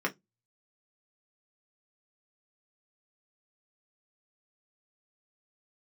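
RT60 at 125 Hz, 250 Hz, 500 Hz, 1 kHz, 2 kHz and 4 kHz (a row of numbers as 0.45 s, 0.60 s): 0.30 s, 0.25 s, 0.20 s, 0.15 s, 0.15 s, 0.15 s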